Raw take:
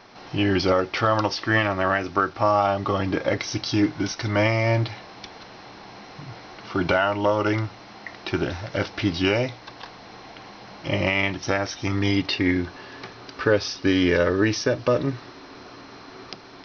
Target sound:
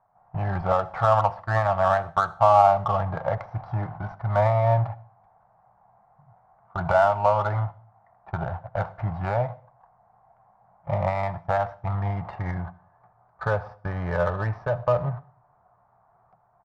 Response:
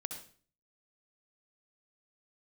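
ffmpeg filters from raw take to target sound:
-filter_complex "[0:a]agate=range=0.126:threshold=0.0316:ratio=16:detection=peak,firequalizer=gain_entry='entry(160,0);entry(280,-27);entry(700,7);entry(2900,-27)':delay=0.05:min_phase=1,adynamicsmooth=sensitivity=3:basefreq=2000,asplit=2[s0][s1];[1:a]atrim=start_sample=2205[s2];[s1][s2]afir=irnorm=-1:irlink=0,volume=0.251[s3];[s0][s3]amix=inputs=2:normalize=0"

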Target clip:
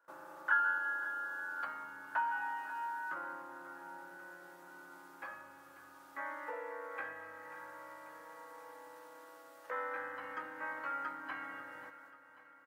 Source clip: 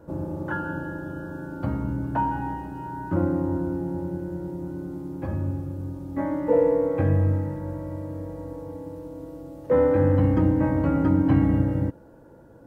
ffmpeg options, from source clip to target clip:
-af "agate=range=0.2:threshold=0.00501:ratio=16:detection=peak,acompressor=threshold=0.0316:ratio=2,highpass=f=1400:t=q:w=2.4,aecho=1:1:539|1078|1617|2156|2695|3234:0.178|0.101|0.0578|0.0329|0.0188|0.0107,volume=0.891"

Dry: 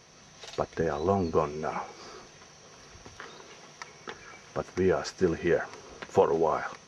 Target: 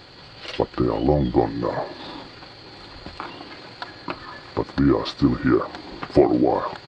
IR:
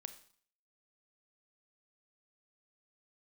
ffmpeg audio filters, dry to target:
-filter_complex "[0:a]asplit=2[s0][s1];[s1]acompressor=threshold=0.0224:ratio=6,volume=0.75[s2];[s0][s2]amix=inputs=2:normalize=0,asetrate=33038,aresample=44100,atempo=1.33484,volume=1.88"

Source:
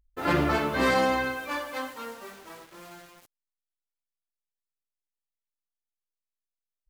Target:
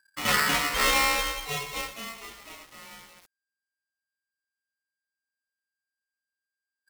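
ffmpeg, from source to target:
-af "aeval=exprs='val(0)*sgn(sin(2*PI*1600*n/s))':c=same"

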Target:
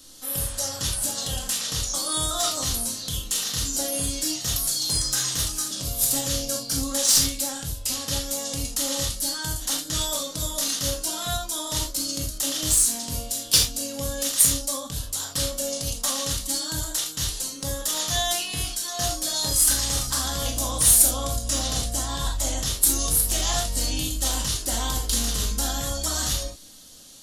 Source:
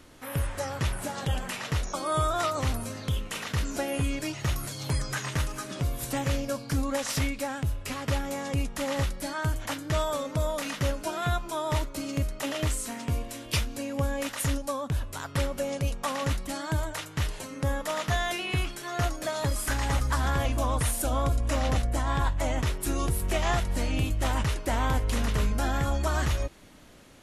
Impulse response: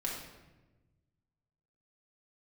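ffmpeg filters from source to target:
-filter_complex "[0:a]aexciter=amount=8.2:drive=8.5:freq=3400,aeval=exprs='1.88*(cos(1*acos(clip(val(0)/1.88,-1,1)))-cos(1*PI/2))+0.106*(cos(7*acos(clip(val(0)/1.88,-1,1)))-cos(7*PI/2))':c=same,highshelf=f=4500:g=-7[s0];[1:a]atrim=start_sample=2205,atrim=end_sample=3969[s1];[s0][s1]afir=irnorm=-1:irlink=0,volume=0.891"

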